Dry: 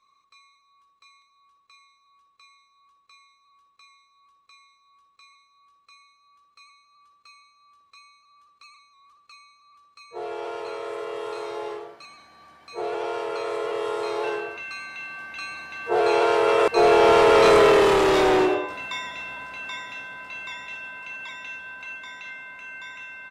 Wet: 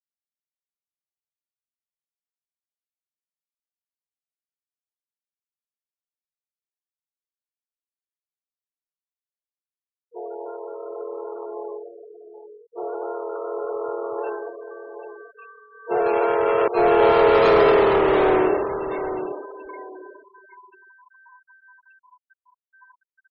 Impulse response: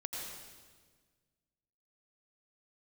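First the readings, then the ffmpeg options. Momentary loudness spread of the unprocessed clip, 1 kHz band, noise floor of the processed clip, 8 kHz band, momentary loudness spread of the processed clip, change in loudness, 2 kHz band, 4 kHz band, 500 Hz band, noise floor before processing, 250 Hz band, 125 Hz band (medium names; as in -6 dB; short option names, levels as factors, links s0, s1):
22 LU, 0.0 dB, under -85 dBFS, under -25 dB, 23 LU, +2.5 dB, -3.0 dB, -7.0 dB, +0.5 dB, -64 dBFS, +1.0 dB, +1.0 dB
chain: -filter_complex "[0:a]aemphasis=mode=reproduction:type=cd,adynamicsmooth=sensitivity=1.5:basefreq=880,asplit=2[s0][s1];[s1]adelay=781,lowpass=f=2700:p=1,volume=0.355,asplit=2[s2][s3];[s3]adelay=781,lowpass=f=2700:p=1,volume=0.27,asplit=2[s4][s5];[s5]adelay=781,lowpass=f=2700:p=1,volume=0.27[s6];[s0][s2][s4][s6]amix=inputs=4:normalize=0,afftfilt=real='re*gte(hypot(re,im),0.0316)':imag='im*gte(hypot(re,im),0.0316)':win_size=1024:overlap=0.75"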